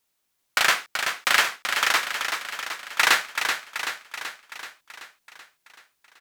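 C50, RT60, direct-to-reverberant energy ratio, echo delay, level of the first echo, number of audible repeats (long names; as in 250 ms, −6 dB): no reverb audible, no reverb audible, no reverb audible, 381 ms, −6.5 dB, 7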